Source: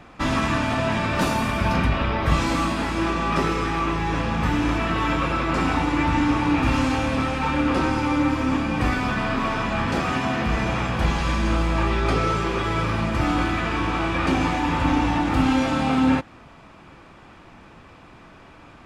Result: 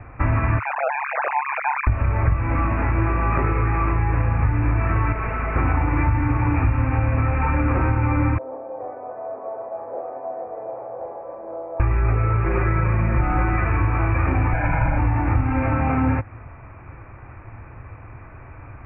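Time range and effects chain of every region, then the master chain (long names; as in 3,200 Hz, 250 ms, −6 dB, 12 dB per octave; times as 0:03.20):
0:00.59–0:01.87: three sine waves on the formant tracks + Bessel high-pass filter 190 Hz + amplitude modulation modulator 140 Hz, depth 70%
0:05.12–0:05.56: lower of the sound and its delayed copy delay 4.6 ms + hard clipping −26.5 dBFS
0:08.38–0:11.80: flat-topped band-pass 580 Hz, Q 2.2 + double-tracking delay 42 ms −14 dB
0:12.45–0:13.64: high-shelf EQ 2,400 Hz −4 dB + comb filter 5.5 ms, depth 87%
0:14.53–0:14.98: lower of the sound and its delayed copy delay 6.2 ms + comb filter 1.3 ms, depth 84%
whole clip: Butterworth low-pass 2,500 Hz 96 dB per octave; low shelf with overshoot 140 Hz +8 dB, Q 3; downward compressor 6 to 1, threshold −18 dBFS; level +2.5 dB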